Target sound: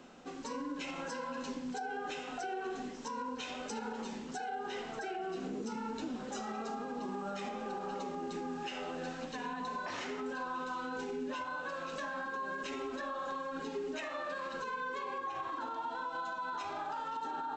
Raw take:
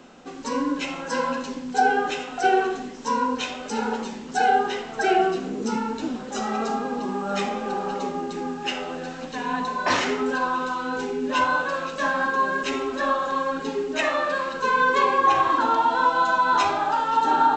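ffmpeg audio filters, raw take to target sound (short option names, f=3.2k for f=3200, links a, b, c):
-af "acompressor=threshold=-25dB:ratio=6,alimiter=limit=-24dB:level=0:latency=1:release=91,volume=-7dB"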